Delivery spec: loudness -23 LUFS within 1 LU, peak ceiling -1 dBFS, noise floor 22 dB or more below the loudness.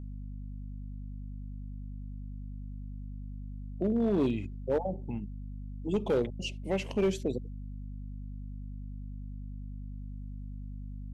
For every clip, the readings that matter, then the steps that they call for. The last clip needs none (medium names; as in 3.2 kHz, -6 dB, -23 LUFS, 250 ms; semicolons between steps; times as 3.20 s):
clipped samples 0.7%; clipping level -21.5 dBFS; hum 50 Hz; highest harmonic 250 Hz; hum level -38 dBFS; loudness -36.0 LUFS; peak level -21.5 dBFS; loudness target -23.0 LUFS
-> clip repair -21.5 dBFS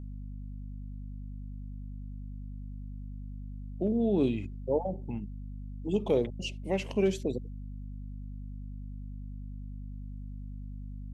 clipped samples 0.0%; hum 50 Hz; highest harmonic 250 Hz; hum level -38 dBFS
-> hum notches 50/100/150/200/250 Hz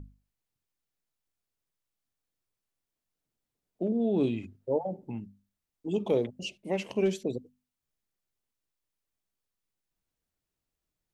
hum not found; loudness -31.5 LUFS; peak level -15.0 dBFS; loudness target -23.0 LUFS
-> trim +8.5 dB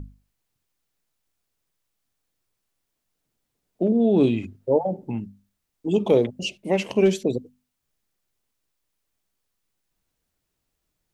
loudness -23.0 LUFS; peak level -6.5 dBFS; noise floor -79 dBFS